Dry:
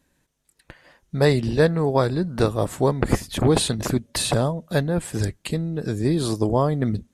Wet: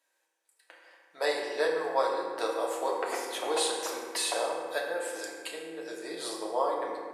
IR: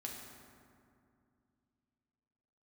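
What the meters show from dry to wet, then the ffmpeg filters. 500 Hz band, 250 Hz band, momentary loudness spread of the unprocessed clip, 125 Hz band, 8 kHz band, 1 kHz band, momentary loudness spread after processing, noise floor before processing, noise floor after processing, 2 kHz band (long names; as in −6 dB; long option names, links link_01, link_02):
−8.0 dB, −19.5 dB, 7 LU, below −40 dB, −5.0 dB, −3.0 dB, 10 LU, −70 dBFS, −77 dBFS, −4.0 dB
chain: -filter_complex "[0:a]highpass=frequency=530:width=0.5412,highpass=frequency=530:width=1.3066[link_01];[1:a]atrim=start_sample=2205,asetrate=57330,aresample=44100[link_02];[link_01][link_02]afir=irnorm=-1:irlink=0"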